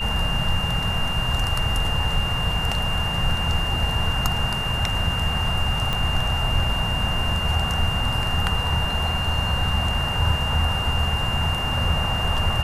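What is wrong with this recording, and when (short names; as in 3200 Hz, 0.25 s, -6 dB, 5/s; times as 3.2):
tone 2800 Hz -26 dBFS
5.93 pop -11 dBFS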